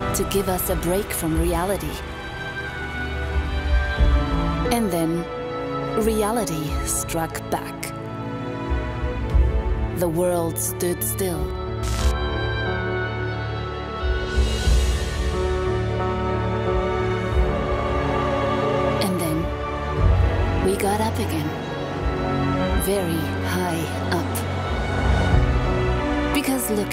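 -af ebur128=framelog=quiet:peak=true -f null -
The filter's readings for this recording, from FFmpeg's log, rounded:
Integrated loudness:
  I:         -23.3 LUFS
  Threshold: -33.3 LUFS
Loudness range:
  LRA:         2.8 LU
  Threshold: -43.4 LUFS
  LRA low:   -24.9 LUFS
  LRA high:  -22.2 LUFS
True peak:
  Peak:       -4.6 dBFS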